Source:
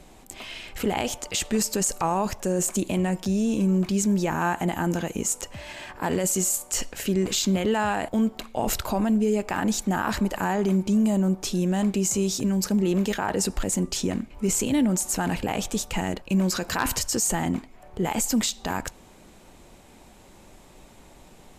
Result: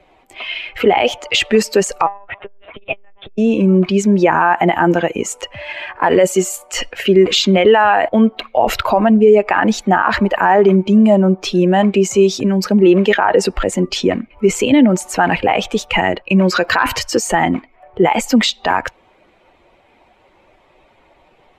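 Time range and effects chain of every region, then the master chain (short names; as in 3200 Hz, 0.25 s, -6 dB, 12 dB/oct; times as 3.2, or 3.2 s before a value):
2.06–3.38 low shelf 270 Hz -9.5 dB + monotone LPC vocoder at 8 kHz 200 Hz + core saturation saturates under 160 Hz
whole clip: per-bin expansion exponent 1.5; three-band isolator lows -15 dB, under 320 Hz, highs -22 dB, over 3500 Hz; maximiser +23 dB; gain -1 dB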